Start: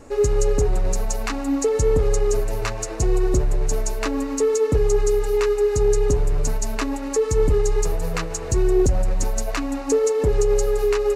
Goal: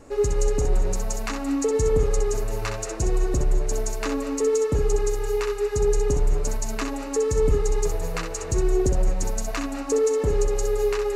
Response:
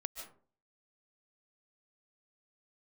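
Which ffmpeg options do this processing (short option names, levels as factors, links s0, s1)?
-filter_complex "[0:a]asplit=2[s0][s1];[1:a]atrim=start_sample=2205,adelay=64[s2];[s1][s2]afir=irnorm=-1:irlink=0,volume=0.631[s3];[s0][s3]amix=inputs=2:normalize=0,volume=0.668"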